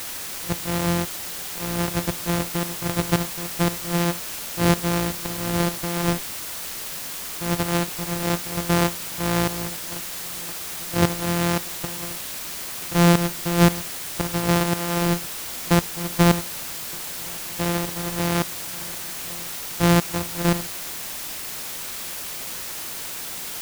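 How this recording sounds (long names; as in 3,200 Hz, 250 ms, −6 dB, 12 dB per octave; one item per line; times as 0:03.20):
a buzz of ramps at a fixed pitch in blocks of 256 samples
tremolo saw up 1.9 Hz, depth 80%
a quantiser's noise floor 6 bits, dither triangular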